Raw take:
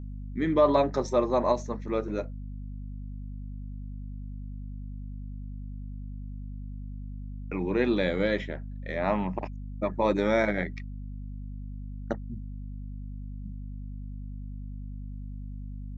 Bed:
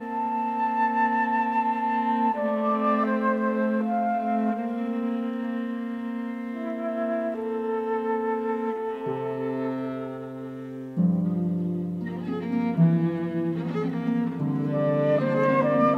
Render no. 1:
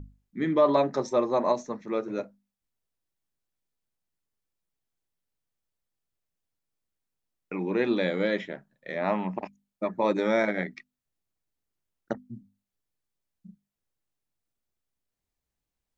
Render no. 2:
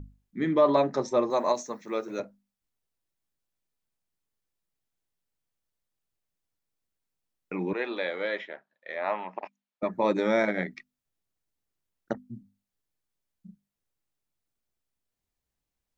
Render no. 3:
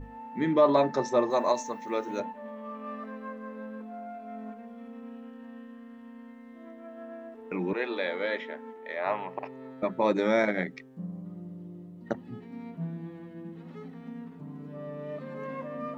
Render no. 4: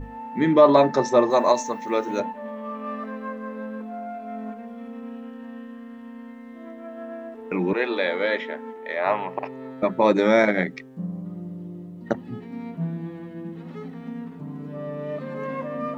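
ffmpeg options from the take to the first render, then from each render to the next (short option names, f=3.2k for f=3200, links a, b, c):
-af "bandreject=f=50:t=h:w=6,bandreject=f=100:t=h:w=6,bandreject=f=150:t=h:w=6,bandreject=f=200:t=h:w=6,bandreject=f=250:t=h:w=6"
-filter_complex "[0:a]asettb=1/sr,asplit=3[a][b][c];[a]atrim=end=1.304[d];[b]atrim=start=1.3:end=2.2,asetpts=PTS-STARTPTS,afade=t=in:d=0.004:c=qsin,afade=t=out:st=0.896:d=0.004:c=qsin,aemphasis=mode=production:type=bsi[e];[c]atrim=start=2.196[f];[d][e]acrossfade=d=0.004:c1=hsin:c2=qsin[g];[g][f]acrossfade=d=0.004:c1=qsin:c2=hsin,asettb=1/sr,asplit=3[h][i][j];[h]atrim=end=7.734[k];[i]atrim=start=7.73:end=9.83,asetpts=PTS-STARTPTS,afade=t=in:d=0.004:c=qsin,afade=t=out:st=2.096:d=0.004:c=qsin,highpass=570,lowpass=3.9k[l];[j]atrim=start=9.826[m];[k][l]acrossfade=d=0.004:c1=hsin:c2=qsin[n];[n][m]acrossfade=d=0.004:c1=qsin:c2=hsin"
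-filter_complex "[1:a]volume=-16dB[a];[0:a][a]amix=inputs=2:normalize=0"
-af "volume=7dB"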